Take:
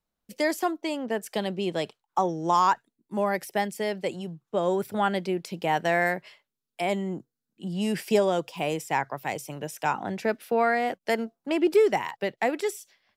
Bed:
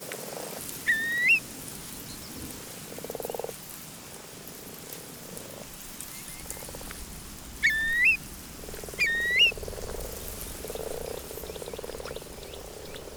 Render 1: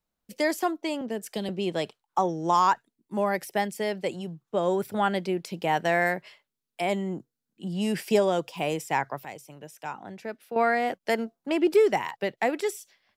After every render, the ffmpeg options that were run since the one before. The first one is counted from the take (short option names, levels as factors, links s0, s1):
-filter_complex "[0:a]asettb=1/sr,asplit=3[s0][s1][s2];[s0]atrim=end=1.014[s3];[s1]atrim=start=1.01:end=1.49,asetpts=PTS-STARTPTS,afade=t=in:d=0.004:c=qsin,afade=t=out:st=0.476:d=0.004:c=qsin,acrossover=split=490|3000[s4][s5][s6];[s5]acompressor=threshold=0.00398:ratio=2:attack=3.2:release=140:knee=2.83:detection=peak[s7];[s4][s7][s6]amix=inputs=3:normalize=0[s8];[s2]atrim=start=1.486[s9];[s3][s8]acrossfade=d=0.004:c1=hsin:c2=qsin[s10];[s10][s9]acrossfade=d=0.004:c1=qsin:c2=hsin,asplit=3[s11][s12][s13];[s11]atrim=end=9.252[s14];[s12]atrim=start=9.248:end=10.562,asetpts=PTS-STARTPTS,volume=0.335[s15];[s13]atrim=start=10.558[s16];[s14][s15]acrossfade=d=0.004:c1=hsin:c2=hsin[s17];[s17][s16]acrossfade=d=0.004:c1=hsin:c2=hsin"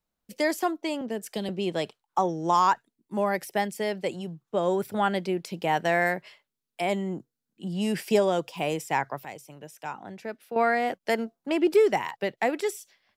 -af anull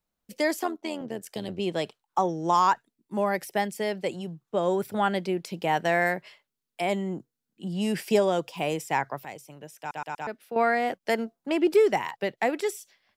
-filter_complex "[0:a]asettb=1/sr,asplit=3[s0][s1][s2];[s0]atrim=end=0.634[s3];[s1]atrim=start=0.63:end=1.6,asetpts=PTS-STARTPTS,afade=t=in:d=0.004:c=qsin,afade=t=out:st=0.966:d=0.004:c=qsin,tremolo=f=86:d=0.667[s4];[s2]atrim=start=1.596[s5];[s3][s4]acrossfade=d=0.004:c1=hsin:c2=qsin[s6];[s6][s5]acrossfade=d=0.004:c1=qsin:c2=hsin,asplit=5[s7][s8][s9][s10][s11];[s7]atrim=end=9.912[s12];[s8]atrim=start=9.788:end=9.912[s13];[s9]atrim=start=9.788:end=9.912[s14];[s10]atrim=start=9.788:end=9.912[s15];[s11]atrim=start=10.268[s16];[s12][s13]acrossfade=d=0.004:c1=hsin:c2=hsin[s17];[s17][s14]acrossfade=d=0.004:c1=hsin:c2=hsin[s18];[s18][s15]acrossfade=d=0.004:c1=hsin:c2=hsin[s19];[s19][s16]acrossfade=d=0.004:c1=hsin:c2=hsin"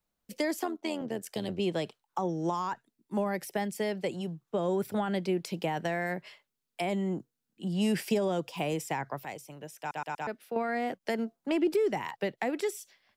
-filter_complex "[0:a]alimiter=limit=0.158:level=0:latency=1:release=13,acrossover=split=330[s0][s1];[s1]acompressor=threshold=0.0282:ratio=4[s2];[s0][s2]amix=inputs=2:normalize=0"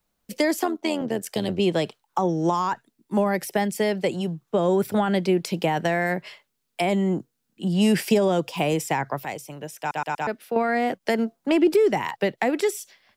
-af "volume=2.66"